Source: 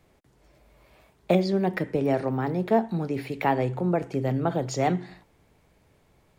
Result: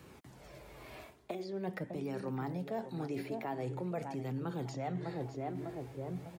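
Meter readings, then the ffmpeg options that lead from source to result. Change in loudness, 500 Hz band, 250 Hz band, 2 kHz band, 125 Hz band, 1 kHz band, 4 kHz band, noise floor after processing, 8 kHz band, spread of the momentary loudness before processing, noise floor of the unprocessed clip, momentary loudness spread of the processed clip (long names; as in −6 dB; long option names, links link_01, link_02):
−13.5 dB, −13.5 dB, −12.0 dB, −13.5 dB, −11.0 dB, −13.5 dB, −12.5 dB, −56 dBFS, −14.5 dB, 4 LU, −63 dBFS, 14 LU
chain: -filter_complex "[0:a]asplit=2[link_01][link_02];[link_02]adelay=601,lowpass=frequency=930:poles=1,volume=-11dB,asplit=2[link_03][link_04];[link_04]adelay=601,lowpass=frequency=930:poles=1,volume=0.35,asplit=2[link_05][link_06];[link_06]adelay=601,lowpass=frequency=930:poles=1,volume=0.35,asplit=2[link_07][link_08];[link_08]adelay=601,lowpass=frequency=930:poles=1,volume=0.35[link_09];[link_03][link_05][link_07][link_09]amix=inputs=4:normalize=0[link_10];[link_01][link_10]amix=inputs=2:normalize=0,acrossover=split=1900|4600[link_11][link_12][link_13];[link_11]acompressor=threshold=-34dB:ratio=4[link_14];[link_12]acompressor=threshold=-57dB:ratio=4[link_15];[link_13]acompressor=threshold=-59dB:ratio=4[link_16];[link_14][link_15][link_16]amix=inputs=3:normalize=0,highpass=82,areverse,acompressor=threshold=-43dB:ratio=6,areverse,flanger=delay=0.7:depth=2.3:regen=-48:speed=0.45:shape=sinusoidal,volume=11.5dB"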